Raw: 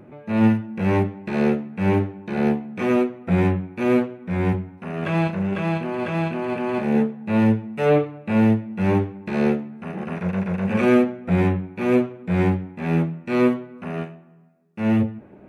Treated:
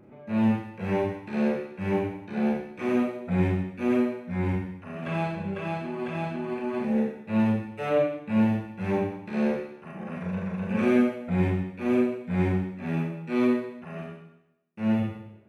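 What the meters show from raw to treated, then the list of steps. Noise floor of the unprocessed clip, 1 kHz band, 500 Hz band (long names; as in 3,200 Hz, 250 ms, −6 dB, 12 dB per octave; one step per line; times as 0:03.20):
−47 dBFS, −6.0 dB, −5.5 dB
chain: reverb reduction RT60 1.5 s
four-comb reverb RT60 0.83 s, combs from 29 ms, DRR −2 dB
level −8.5 dB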